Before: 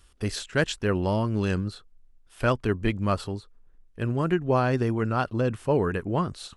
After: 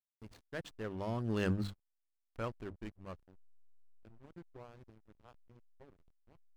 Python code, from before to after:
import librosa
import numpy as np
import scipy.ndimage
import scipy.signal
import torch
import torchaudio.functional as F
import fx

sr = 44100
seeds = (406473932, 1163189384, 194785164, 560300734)

y = fx.doppler_pass(x, sr, speed_mps=17, closest_m=3.0, pass_at_s=1.6)
y = fx.hum_notches(y, sr, base_hz=50, count=6)
y = fx.backlash(y, sr, play_db=-40.5)
y = y * 10.0 ** (-2.0 / 20.0)